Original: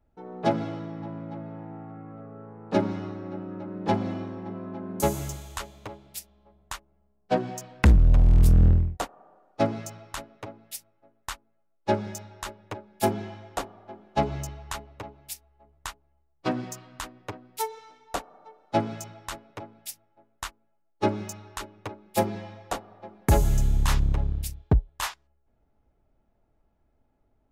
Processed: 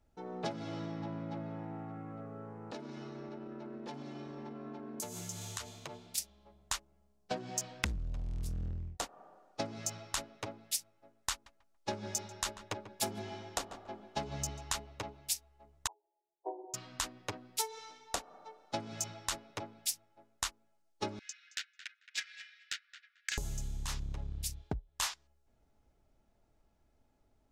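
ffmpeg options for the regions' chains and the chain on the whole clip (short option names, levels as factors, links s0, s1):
-filter_complex "[0:a]asettb=1/sr,asplit=3[s0][s1][s2];[s0]atrim=end=2.714[s3];[s1]atrim=start=2.71:end=6.18,asetpts=PTS-STARTPTS,afade=t=in:d=0.004:c=qsin,afade=t=out:st=3.466:d=0.004:c=qsin,afreqshift=37,acompressor=threshold=0.0126:ratio=12:attack=3.2:release=140:knee=1:detection=peak[s4];[s2]atrim=start=6.176[s5];[s3][s4]acrossfade=d=0.004:c1=hsin:c2=qsin[s6];[s6][s5]acrossfade=d=0.004:c1=qsin:c2=hsin,asettb=1/sr,asplit=3[s7][s8][s9];[s7]atrim=end=11.324[s10];[s8]atrim=start=11.32:end=14.73,asetpts=PTS-STARTPTS,afade=t=in:d=0.004:c=qsin,afade=t=out:st=3.406:d=0.004:c=qsin,volume=5.62,asoftclip=hard,volume=0.178,asplit=2[s11][s12];[s12]adelay=141,lowpass=f=1800:p=1,volume=0.211,asplit=2[s13][s14];[s14]adelay=141,lowpass=f=1800:p=1,volume=0.3,asplit=2[s15][s16];[s16]adelay=141,lowpass=f=1800:p=1,volume=0.3[s17];[s11][s13][s15][s17]amix=inputs=4:normalize=0,atrim=end_sample=150381[s18];[s9]atrim=start=14.726[s19];[s10][s18]acrossfade=d=0.004:c1=hsin:c2=qsin[s20];[s20][s19]acrossfade=d=0.004:c1=qsin:c2=hsin,asettb=1/sr,asplit=3[s21][s22][s23];[s21]atrim=end=15.874[s24];[s22]atrim=start=15.87:end=16.74,asetpts=PTS-STARTPTS,afade=t=in:d=0.004:c=qsin,afade=t=out:st=0.866:d=0.004:c=qsin,asuperpass=centerf=570:order=20:qfactor=0.95,equalizer=f=580:w=2.4:g=-10[s25];[s23]atrim=start=16.736[s26];[s24][s25]acrossfade=d=0.004:c1=hsin:c2=qsin[s27];[s27][s26]acrossfade=d=0.004:c1=qsin:c2=hsin,asettb=1/sr,asplit=3[s28][s29][s30];[s28]atrim=end=21.194[s31];[s29]atrim=start=21.19:end=23.38,asetpts=PTS-STARTPTS,afade=t=in:d=0.004:c=qsin,afade=t=out:st=2.186:d=0.004:c=qsin,asuperpass=centerf=3700:order=20:qfactor=0.54,asplit=2[s32][s33];[s33]adelay=221,lowpass=f=4600:p=1,volume=0.316,asplit=2[s34][s35];[s35]adelay=221,lowpass=f=4600:p=1,volume=0.2,asplit=2[s36][s37];[s37]adelay=221,lowpass=f=4600:p=1,volume=0.2[s38];[s32][s34][s36][s38]amix=inputs=4:normalize=0,atrim=end_sample=96579,adynamicsmooth=sensitivity=5:basefreq=2600[s39];[s30]atrim=start=23.376[s40];[s31][s39]acrossfade=d=0.004:c1=hsin:c2=qsin[s41];[s41][s40]acrossfade=d=0.004:c1=qsin:c2=hsin,acompressor=threshold=0.0251:ratio=12,equalizer=f=5900:t=o:w=2.1:g=11,volume=0.708"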